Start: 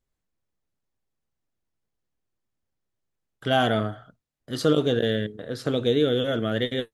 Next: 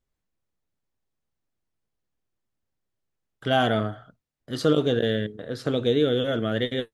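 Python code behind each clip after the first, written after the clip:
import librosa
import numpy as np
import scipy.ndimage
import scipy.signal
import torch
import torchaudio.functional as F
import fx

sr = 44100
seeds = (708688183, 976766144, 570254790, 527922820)

y = fx.high_shelf(x, sr, hz=7700.0, db=-5.5)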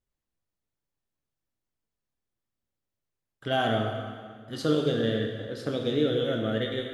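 y = fx.rev_plate(x, sr, seeds[0], rt60_s=1.8, hf_ratio=0.9, predelay_ms=0, drr_db=2.0)
y = y * 10.0 ** (-5.5 / 20.0)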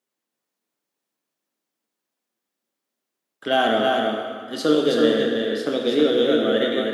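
y = scipy.signal.sosfilt(scipy.signal.butter(4, 220.0, 'highpass', fs=sr, output='sos'), x)
y = y + 10.0 ** (-3.5 / 20.0) * np.pad(y, (int(323 * sr / 1000.0), 0))[:len(y)]
y = y * 10.0 ** (7.0 / 20.0)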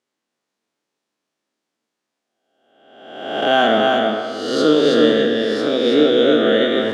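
y = fx.spec_swells(x, sr, rise_s=1.08)
y = scipy.signal.sosfilt(scipy.signal.butter(2, 7000.0, 'lowpass', fs=sr, output='sos'), y)
y = y * 10.0 ** (2.5 / 20.0)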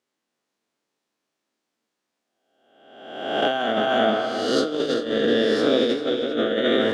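y = fx.over_compress(x, sr, threshold_db=-17.0, ratio=-0.5)
y = y + 10.0 ** (-12.0 / 20.0) * np.pad(y, (int(390 * sr / 1000.0), 0))[:len(y)]
y = y * 10.0 ** (-3.5 / 20.0)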